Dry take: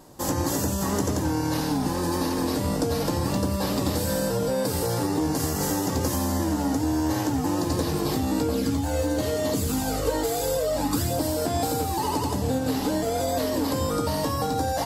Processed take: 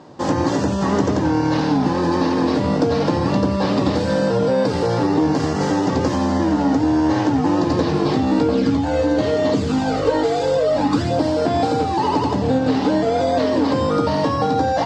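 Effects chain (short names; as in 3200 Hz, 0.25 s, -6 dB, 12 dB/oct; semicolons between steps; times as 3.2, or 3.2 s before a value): BPF 120–7100 Hz; air absorption 150 m; gain +8.5 dB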